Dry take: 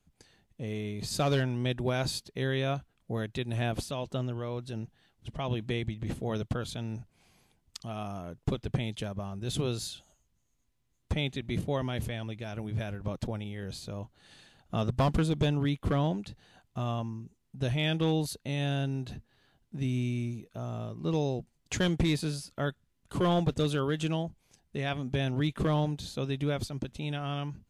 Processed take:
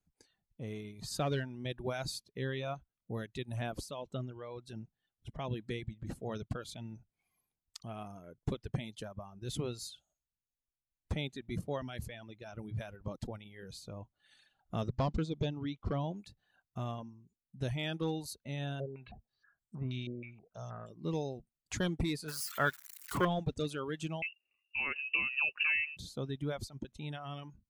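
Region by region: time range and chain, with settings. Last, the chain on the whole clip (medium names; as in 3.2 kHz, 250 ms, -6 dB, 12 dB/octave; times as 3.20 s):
14.88–16.16 s: low-pass 6.3 kHz 24 dB/octave + dynamic bell 1.7 kHz, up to -6 dB, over -51 dBFS, Q 1.9
18.80–20.90 s: peaking EQ 290 Hz -7 dB 0.43 oct + step-sequenced low-pass 6.3 Hz 490–8000 Hz
22.28–23.25 s: zero-crossing glitches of -29.5 dBFS + peaking EQ 1.5 kHz +13.5 dB 1.8 oct
24.22–25.97 s: bass shelf 410 Hz +7 dB + frequency inversion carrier 2.8 kHz
whole clip: spectral noise reduction 7 dB; peaking EQ 2.9 kHz -3 dB 0.59 oct; reverb removal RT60 1.8 s; trim -5 dB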